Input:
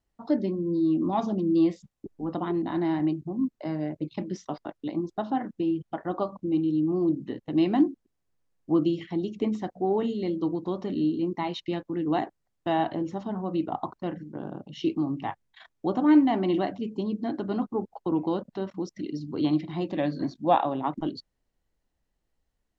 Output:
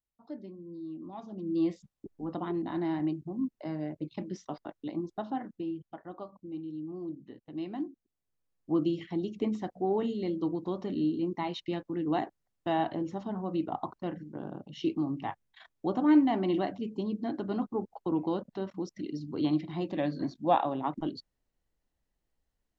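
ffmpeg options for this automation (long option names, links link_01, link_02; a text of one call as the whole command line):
ffmpeg -i in.wav -af "volume=5.5dB,afade=type=in:start_time=1.28:duration=0.42:silence=0.251189,afade=type=out:start_time=5.06:duration=1.08:silence=0.354813,afade=type=in:start_time=7.83:duration=1.16:silence=0.298538" out.wav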